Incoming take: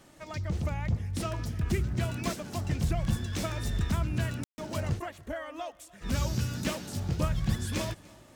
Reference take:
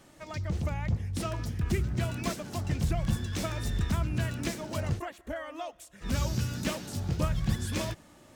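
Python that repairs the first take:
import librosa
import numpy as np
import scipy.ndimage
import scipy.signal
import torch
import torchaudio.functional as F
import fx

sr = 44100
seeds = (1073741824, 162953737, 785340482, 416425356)

y = fx.fix_declick_ar(x, sr, threshold=6.5)
y = fx.fix_ambience(y, sr, seeds[0], print_start_s=7.84, print_end_s=8.34, start_s=4.44, end_s=4.58)
y = fx.fix_echo_inverse(y, sr, delay_ms=295, level_db=-23.0)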